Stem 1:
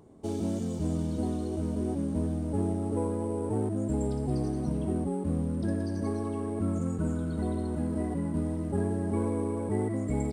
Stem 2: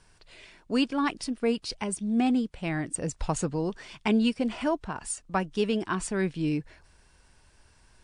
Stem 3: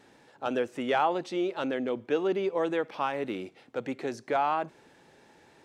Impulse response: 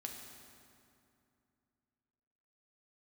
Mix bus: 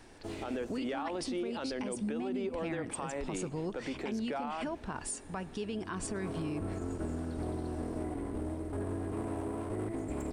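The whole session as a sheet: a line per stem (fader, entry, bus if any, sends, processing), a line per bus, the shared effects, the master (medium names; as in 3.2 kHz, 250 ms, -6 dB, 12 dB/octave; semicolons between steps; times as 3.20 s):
-4.0 dB, 0.00 s, no send, comb filter that takes the minimum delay 2.9 ms; auto duck -16 dB, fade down 1.40 s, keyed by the third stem
-0.5 dB, 0.00 s, send -14.5 dB, compression, threshold -32 dBFS, peak gain reduction 12 dB
-0.5 dB, 0.00 s, no send, high-pass 170 Hz; tone controls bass +5 dB, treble -2 dB; compression, threshold -28 dBFS, peak gain reduction 8 dB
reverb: on, RT60 2.6 s, pre-delay 4 ms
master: peak limiter -28 dBFS, peak gain reduction 10 dB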